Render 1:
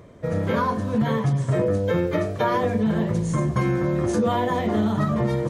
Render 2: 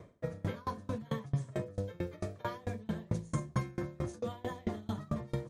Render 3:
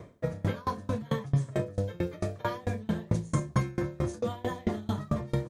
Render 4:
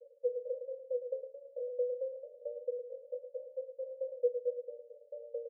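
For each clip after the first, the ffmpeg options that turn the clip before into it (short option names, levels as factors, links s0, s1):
-filter_complex "[0:a]acrossover=split=120|3000[s0][s1][s2];[s1]acompressor=threshold=0.0447:ratio=6[s3];[s0][s3][s2]amix=inputs=3:normalize=0,bandreject=f=3000:w=25,aeval=exprs='val(0)*pow(10,-29*if(lt(mod(4.5*n/s,1),2*abs(4.5)/1000),1-mod(4.5*n/s,1)/(2*abs(4.5)/1000),(mod(4.5*n/s,1)-2*abs(4.5)/1000)/(1-2*abs(4.5)/1000))/20)':c=same,volume=0.75"
-filter_complex "[0:a]asplit=2[s0][s1];[s1]adelay=29,volume=0.224[s2];[s0][s2]amix=inputs=2:normalize=0,volume=2"
-af "asuperpass=centerf=520:order=12:qfactor=4.8,aecho=1:1:109:0.376,volume=1.33"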